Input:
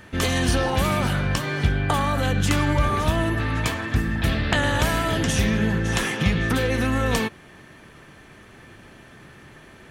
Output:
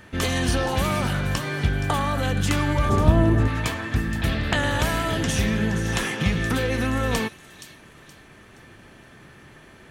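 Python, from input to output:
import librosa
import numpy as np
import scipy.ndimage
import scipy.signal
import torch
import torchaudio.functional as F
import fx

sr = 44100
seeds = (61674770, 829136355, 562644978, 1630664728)

y = fx.tilt_shelf(x, sr, db=8.0, hz=1200.0, at=(2.89, 3.48))
y = fx.dmg_crackle(y, sr, seeds[0], per_s=fx.line((4.97, 25.0), (5.44, 94.0)), level_db=-44.0, at=(4.97, 5.44), fade=0.02)
y = fx.echo_wet_highpass(y, sr, ms=472, feedback_pct=35, hz=3600.0, wet_db=-10.5)
y = y * 10.0 ** (-1.5 / 20.0)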